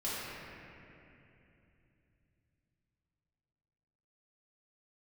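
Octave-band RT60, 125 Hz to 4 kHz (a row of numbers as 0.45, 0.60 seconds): 4.9, 4.0, 3.1, 2.6, 2.9, 2.1 seconds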